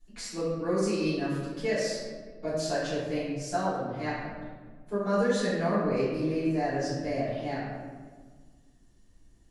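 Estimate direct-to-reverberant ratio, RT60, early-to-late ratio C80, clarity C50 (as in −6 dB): −13.5 dB, 1.5 s, 1.5 dB, −1.0 dB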